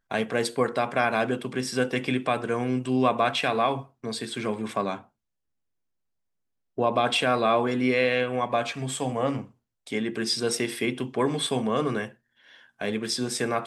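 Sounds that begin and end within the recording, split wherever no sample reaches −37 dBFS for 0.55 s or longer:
0:06.78–0:12.09

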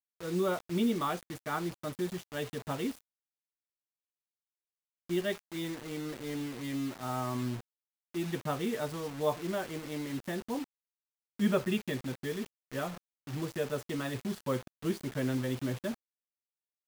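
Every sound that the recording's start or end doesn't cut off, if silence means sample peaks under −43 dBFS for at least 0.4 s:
0:05.09–0:07.61
0:08.14–0:10.64
0:11.39–0:15.95

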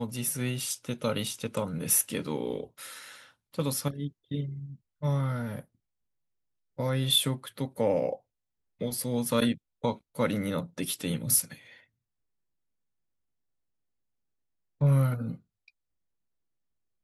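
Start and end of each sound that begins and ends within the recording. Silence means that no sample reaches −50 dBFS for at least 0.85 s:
0:06.79–0:11.80
0:14.81–0:15.68

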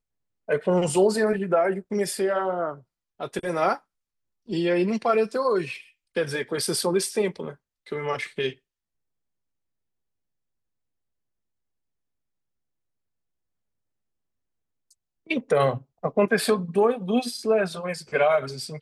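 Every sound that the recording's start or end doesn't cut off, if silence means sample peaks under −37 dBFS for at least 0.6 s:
0:04.49–0:08.52

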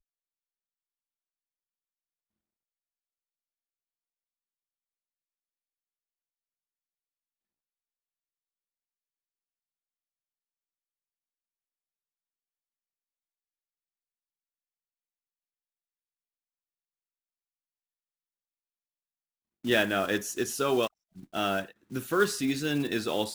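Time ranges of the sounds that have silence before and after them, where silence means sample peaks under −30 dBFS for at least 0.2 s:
0:19.65–0:20.87
0:21.35–0:21.61

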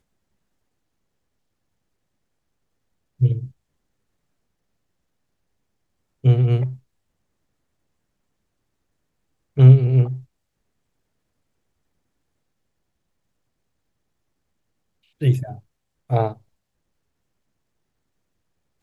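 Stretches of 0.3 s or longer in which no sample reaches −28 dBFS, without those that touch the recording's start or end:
0:03.46–0:06.25
0:06.73–0:09.57
0:10.17–0:15.22
0:15.53–0:16.11

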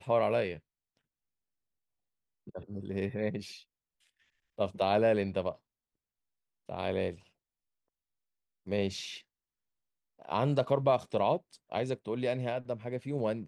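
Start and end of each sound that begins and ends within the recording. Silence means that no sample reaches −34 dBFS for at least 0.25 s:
0:02.55–0:03.40
0:04.59–0:05.51
0:06.69–0:07.11
0:08.68–0:09.14
0:10.29–0:11.37

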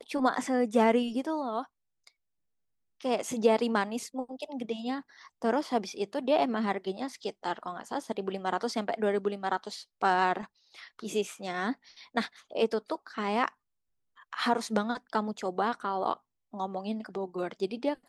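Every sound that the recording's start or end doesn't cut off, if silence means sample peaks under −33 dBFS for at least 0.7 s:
0:03.05–0:13.48

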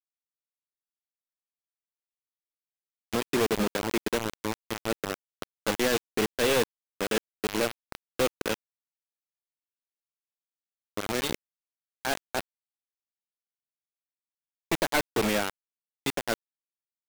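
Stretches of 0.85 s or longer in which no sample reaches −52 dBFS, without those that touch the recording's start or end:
0:08.54–0:10.97
0:12.41–0:14.72

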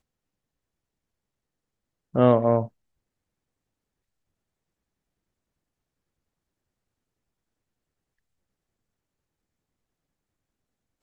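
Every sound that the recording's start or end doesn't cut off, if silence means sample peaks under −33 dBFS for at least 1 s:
0:02.15–0:02.66

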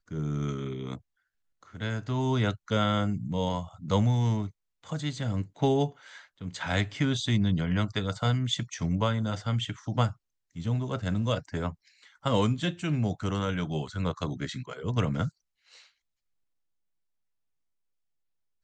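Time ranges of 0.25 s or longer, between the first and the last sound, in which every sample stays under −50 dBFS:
0:00.99–0:01.63
0:04.51–0:04.84
0:10.13–0:10.55
0:15.29–0:15.71

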